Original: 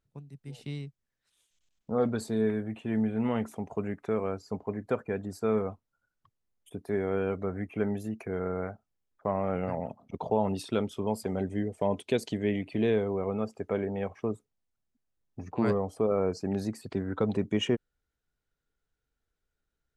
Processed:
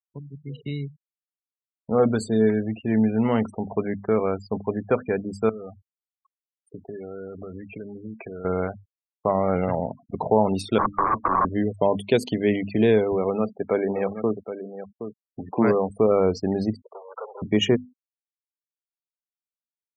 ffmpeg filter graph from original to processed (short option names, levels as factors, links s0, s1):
-filter_complex "[0:a]asettb=1/sr,asplit=3[s0][s1][s2];[s0]atrim=end=5.494[s3];[s1]atrim=start=5.49:end=8.45,asetpts=PTS-STARTPTS,afade=t=in:d=0.004:c=qsin,afade=t=out:st=2.956:d=0.004:c=qsin,acompressor=threshold=0.0112:ratio=10:attack=3.2:release=140:knee=1:detection=peak,highpass=f=62:p=1[s4];[s2]atrim=start=8.446[s5];[s3][s4]acrossfade=d=0.004:c1=hsin:c2=qsin[s6];[s6][s5]acrossfade=d=0.004:c1=qsin:c2=hsin,asettb=1/sr,asplit=3[s7][s8][s9];[s7]atrim=end=10.784[s10];[s8]atrim=start=10.78:end=11.45,asetpts=PTS-STARTPTS,afade=t=in:d=0.004:c=qsin,afade=t=out:st=0.666:d=0.004:c=qsin,bandreject=f=50:t=h:w=6,bandreject=f=100:t=h:w=6,bandreject=f=150:t=h:w=6,bandreject=f=200:t=h:w=6,bandreject=f=250:t=h:w=6,bandreject=f=300:t=h:w=6,aeval=exprs='(mod(31.6*val(0)+1,2)-1)/31.6':c=same,lowpass=f=1100:t=q:w=9.9[s11];[s9]atrim=start=11.446[s12];[s10][s11]acrossfade=d=0.004:c1=hsin:c2=qsin[s13];[s13][s12]acrossfade=d=0.004:c1=qsin:c2=hsin,asettb=1/sr,asplit=3[s14][s15][s16];[s14]atrim=end=13.124[s17];[s15]atrim=start=13.12:end=15.9,asetpts=PTS-STARTPTS,afade=t=in:d=0.004:c=qsin,afade=t=out:st=2.776:d=0.004:c=qsin,highpass=140,lowpass=4400,aecho=1:1:770:0.299,atrim=end_sample=122598[s18];[s16]atrim=start=15.896[s19];[s17][s18]acrossfade=d=0.004:c1=hsin:c2=qsin[s20];[s20][s19]acrossfade=d=0.004:c1=qsin:c2=hsin,asettb=1/sr,asplit=3[s21][s22][s23];[s21]atrim=end=16.764[s24];[s22]atrim=start=16.76:end=17.42,asetpts=PTS-STARTPTS,afade=t=in:d=0.004:c=qsin,afade=t=out:st=0.656:d=0.004:c=qsin,aeval=exprs='(tanh(63.1*val(0)+0.05)-tanh(0.05))/63.1':c=same,asuperpass=centerf=800:order=12:qfactor=0.79[s25];[s23]atrim=start=17.416[s26];[s24][s25]acrossfade=d=0.004:c1=hsin:c2=qsin[s27];[s27][s26]acrossfade=d=0.004:c1=qsin:c2=hsin,bandreject=f=50:t=h:w=6,bandreject=f=100:t=h:w=6,bandreject=f=150:t=h:w=6,bandreject=f=200:t=h:w=6,bandreject=f=250:t=h:w=6,afftfilt=real='re*gte(hypot(re,im),0.00794)':imag='im*gte(hypot(re,im),0.00794)':win_size=1024:overlap=0.75,volume=2.51"